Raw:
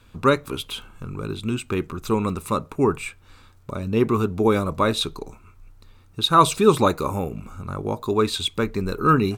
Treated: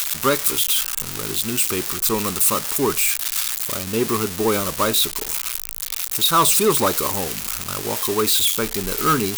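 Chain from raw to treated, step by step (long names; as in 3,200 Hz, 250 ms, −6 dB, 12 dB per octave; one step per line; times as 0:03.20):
spike at every zero crossing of −9 dBFS
parametric band 95 Hz −7 dB 2.6 octaves
soft clipping −10.5 dBFS, distortion −16 dB
level +1.5 dB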